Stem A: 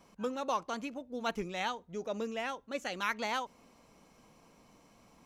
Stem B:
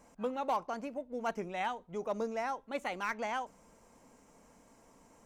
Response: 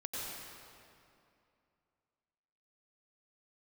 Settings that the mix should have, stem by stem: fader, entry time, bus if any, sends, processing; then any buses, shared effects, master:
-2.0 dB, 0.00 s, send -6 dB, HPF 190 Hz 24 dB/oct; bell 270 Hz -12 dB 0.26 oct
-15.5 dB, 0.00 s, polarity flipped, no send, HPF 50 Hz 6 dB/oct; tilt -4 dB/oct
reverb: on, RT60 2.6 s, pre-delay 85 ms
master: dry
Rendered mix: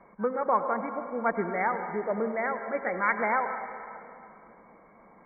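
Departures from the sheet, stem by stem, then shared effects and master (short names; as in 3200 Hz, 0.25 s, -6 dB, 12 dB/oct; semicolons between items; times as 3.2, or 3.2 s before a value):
stem A -2.0 dB -> +6.0 dB; master: extra brick-wall FIR low-pass 2300 Hz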